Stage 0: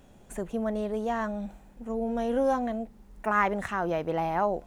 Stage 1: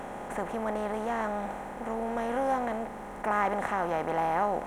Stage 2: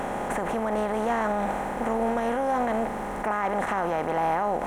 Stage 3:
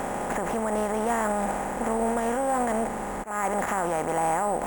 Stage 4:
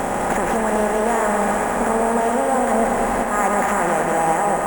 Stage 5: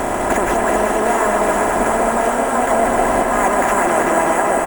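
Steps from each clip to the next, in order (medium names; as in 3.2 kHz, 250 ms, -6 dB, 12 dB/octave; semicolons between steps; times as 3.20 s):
spectral levelling over time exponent 0.4; peaking EQ 810 Hz +5.5 dB 0.37 oct; trim -7.5 dB
peak limiter -26.5 dBFS, peak gain reduction 11 dB; trim +9 dB
slow attack 144 ms; sample-and-hold 5×
gain riding 0.5 s; band-passed feedback delay 123 ms, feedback 73%, band-pass 1.7 kHz, level -4.5 dB; bit-crushed delay 197 ms, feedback 80%, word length 9-bit, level -7 dB; trim +5.5 dB
harmonic-percussive split harmonic -9 dB; comb 3 ms, depth 41%; two-band feedback delay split 810 Hz, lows 260 ms, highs 380 ms, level -6 dB; trim +6 dB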